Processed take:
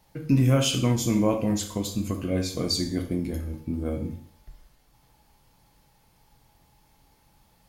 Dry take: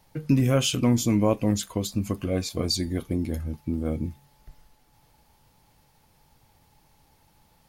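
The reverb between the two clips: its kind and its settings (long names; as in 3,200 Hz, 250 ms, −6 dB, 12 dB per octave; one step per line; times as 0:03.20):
dense smooth reverb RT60 0.57 s, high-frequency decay 0.95×, DRR 3.5 dB
level −2 dB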